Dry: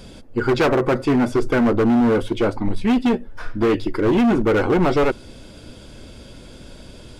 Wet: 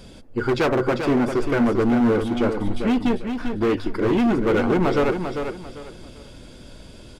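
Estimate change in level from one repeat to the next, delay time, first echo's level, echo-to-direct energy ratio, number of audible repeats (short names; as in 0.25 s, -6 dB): -11.5 dB, 0.396 s, -7.0 dB, -6.5 dB, 3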